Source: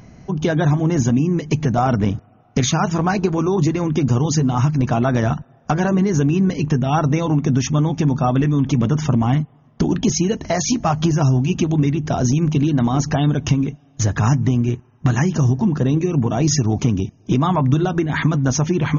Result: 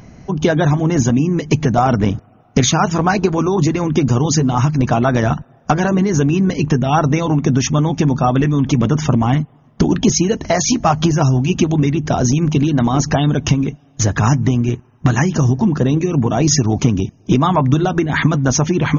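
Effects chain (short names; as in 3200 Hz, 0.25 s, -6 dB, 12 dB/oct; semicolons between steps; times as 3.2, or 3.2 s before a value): harmonic-percussive split harmonic -4 dB; gain +5.5 dB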